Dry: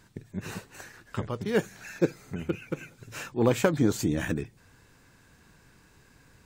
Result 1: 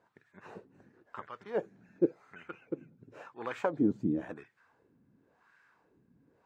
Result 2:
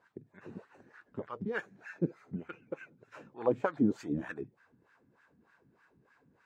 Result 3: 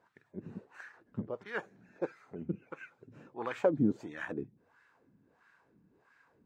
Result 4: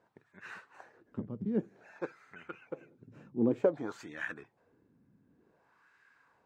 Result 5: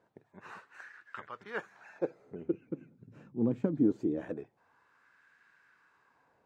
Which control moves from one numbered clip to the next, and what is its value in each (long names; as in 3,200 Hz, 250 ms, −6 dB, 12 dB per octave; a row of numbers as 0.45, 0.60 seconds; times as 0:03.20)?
LFO wah, speed: 0.94, 3.3, 1.5, 0.54, 0.23 Hertz